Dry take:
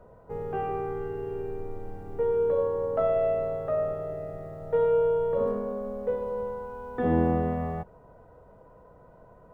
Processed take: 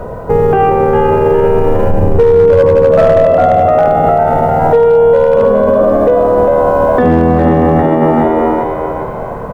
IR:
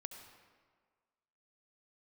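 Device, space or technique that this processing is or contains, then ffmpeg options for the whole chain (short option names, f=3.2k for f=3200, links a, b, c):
loud club master: -filter_complex "[0:a]asettb=1/sr,asplit=3[a][b][c];[a]atrim=end=1.904[d];[b]atrim=start=1.9:end=3.25,asetpts=PTS-STARTPTS,afade=t=in:d=0.004:c=qsin,afade=t=out:st=1.346:d=0.004:c=qsin,lowshelf=f=460:g=10[e];[c]atrim=start=3.246[f];[d][e]acrossfade=d=0.004:c1=hsin:c2=qsin[g];[g][f]acrossfade=d=0.004:c1=qsin:c2=hsin,asplit=6[h][i][j][k][l][m];[i]adelay=404,afreqshift=76,volume=-5dB[n];[j]adelay=808,afreqshift=152,volume=-12.5dB[o];[k]adelay=1212,afreqshift=228,volume=-20.1dB[p];[l]adelay=1616,afreqshift=304,volume=-27.6dB[q];[m]adelay=2020,afreqshift=380,volume=-35.1dB[r];[h][n][o][p][q][r]amix=inputs=6:normalize=0,acompressor=threshold=-27dB:ratio=2,asoftclip=type=hard:threshold=-21dB,alimiter=level_in=30dB:limit=-1dB:release=50:level=0:latency=1,volume=-1dB"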